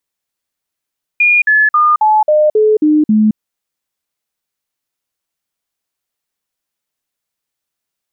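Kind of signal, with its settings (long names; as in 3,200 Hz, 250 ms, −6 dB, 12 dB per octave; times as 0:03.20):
stepped sweep 2,430 Hz down, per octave 2, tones 8, 0.22 s, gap 0.05 s −6.5 dBFS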